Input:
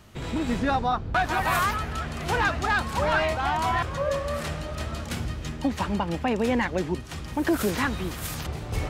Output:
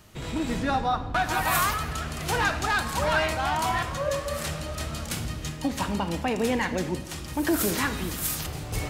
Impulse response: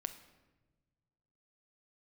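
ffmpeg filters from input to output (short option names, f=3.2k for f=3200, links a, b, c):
-filter_complex "[0:a]asetnsamples=n=441:p=0,asendcmd='1.29 highshelf g 12',highshelf=f=5.2k:g=7[a];[1:a]atrim=start_sample=2205[b];[a][b]afir=irnorm=-1:irlink=0"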